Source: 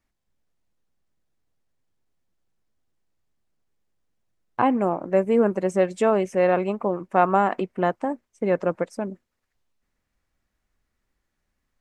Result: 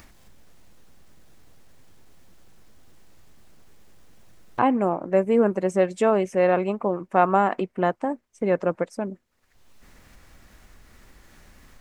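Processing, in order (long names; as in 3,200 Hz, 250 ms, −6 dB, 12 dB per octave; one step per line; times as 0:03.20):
upward compression, threshold −29 dBFS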